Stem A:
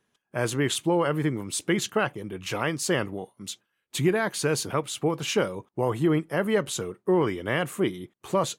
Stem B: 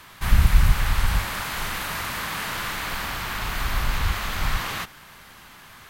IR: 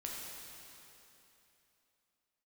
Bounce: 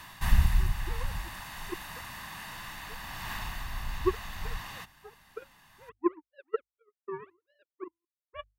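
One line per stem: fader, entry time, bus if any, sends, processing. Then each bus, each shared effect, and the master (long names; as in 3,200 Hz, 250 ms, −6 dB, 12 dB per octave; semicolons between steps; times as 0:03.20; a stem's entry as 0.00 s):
−3.0 dB, 0.00 s, no send, three sine waves on the formant tracks; elliptic low-pass filter 1,700 Hz; power curve on the samples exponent 3
−1.5 dB, 0.00 s, no send, comb filter 1.1 ms, depth 56%; automatic ducking −13 dB, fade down 0.70 s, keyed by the first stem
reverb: not used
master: mains-hum notches 50/100 Hz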